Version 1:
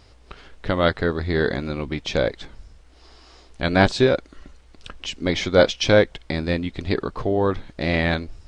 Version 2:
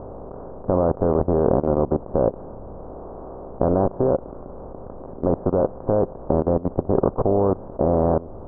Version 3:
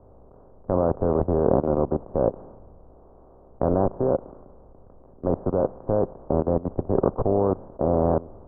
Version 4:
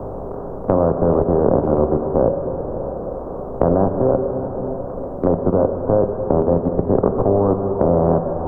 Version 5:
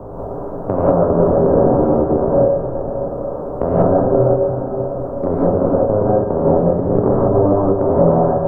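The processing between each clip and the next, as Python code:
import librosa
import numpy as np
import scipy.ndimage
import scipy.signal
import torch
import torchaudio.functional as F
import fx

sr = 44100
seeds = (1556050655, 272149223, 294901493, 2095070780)

y1 = fx.bin_compress(x, sr, power=0.4)
y1 = scipy.signal.sosfilt(scipy.signal.butter(8, 1100.0, 'lowpass', fs=sr, output='sos'), y1)
y1 = fx.level_steps(y1, sr, step_db=18)
y2 = fx.band_widen(y1, sr, depth_pct=70)
y2 = y2 * 10.0 ** (-2.5 / 20.0)
y3 = fx.rev_plate(y2, sr, seeds[0], rt60_s=2.4, hf_ratio=0.9, predelay_ms=0, drr_db=5.5)
y3 = fx.band_squash(y3, sr, depth_pct=70)
y3 = y3 * 10.0 ** (5.0 / 20.0)
y4 = fx.rev_gated(y3, sr, seeds[1], gate_ms=220, shape='rising', drr_db=-6.0)
y4 = y4 * 10.0 ** (-4.0 / 20.0)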